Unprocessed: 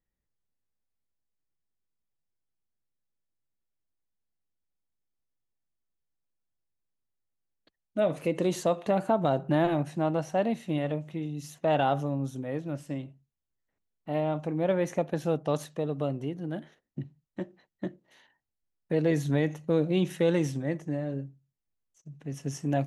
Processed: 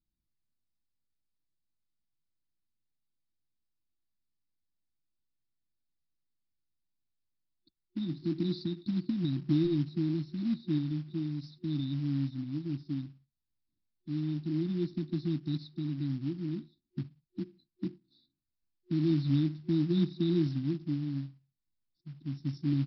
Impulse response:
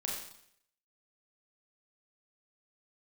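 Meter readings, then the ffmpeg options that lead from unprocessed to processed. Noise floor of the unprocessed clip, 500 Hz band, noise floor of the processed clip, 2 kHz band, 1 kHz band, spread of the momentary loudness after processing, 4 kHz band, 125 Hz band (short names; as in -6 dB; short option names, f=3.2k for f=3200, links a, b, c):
-85 dBFS, -13.5 dB, -85 dBFS, -15.5 dB, under -25 dB, 13 LU, -2.5 dB, 0.0 dB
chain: -af "afftfilt=real='re*(1-between(b*sr/4096,360,3500))':imag='im*(1-between(b*sr/4096,360,3500))':win_size=4096:overlap=0.75,aresample=11025,acrusher=bits=6:mode=log:mix=0:aa=0.000001,aresample=44100"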